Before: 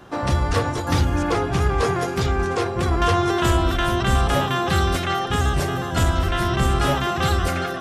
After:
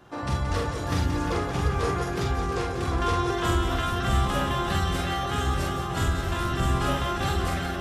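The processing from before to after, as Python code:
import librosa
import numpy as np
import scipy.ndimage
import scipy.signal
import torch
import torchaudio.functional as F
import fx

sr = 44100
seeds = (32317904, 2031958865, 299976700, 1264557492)

y = fx.echo_multitap(x, sr, ms=(45, 176, 348, 581, 683, 871), db=(-3.0, -8.5, -8.5, -11.5, -11.0, -11.5))
y = F.gain(torch.from_numpy(y), -8.5).numpy()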